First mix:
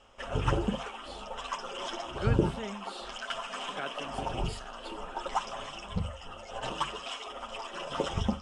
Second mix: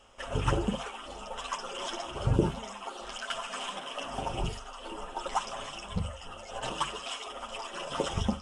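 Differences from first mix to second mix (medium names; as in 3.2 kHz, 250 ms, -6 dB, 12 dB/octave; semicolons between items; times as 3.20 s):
speech -12.0 dB; master: remove distance through air 57 m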